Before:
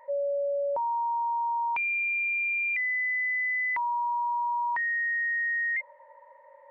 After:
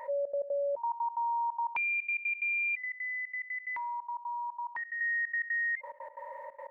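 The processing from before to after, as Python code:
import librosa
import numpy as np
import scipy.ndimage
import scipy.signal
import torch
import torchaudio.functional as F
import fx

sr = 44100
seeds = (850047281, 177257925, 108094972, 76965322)

y = fx.comb_fb(x, sr, f0_hz=290.0, decay_s=0.77, harmonics='all', damping=0.0, mix_pct=70, at=(2.83, 5.01))
y = fx.step_gate(y, sr, bpm=180, pattern='xxx.x.xxx.x.x.x', floor_db=-24.0, edge_ms=4.5)
y = fx.env_flatten(y, sr, amount_pct=50)
y = y * 10.0 ** (-2.5 / 20.0)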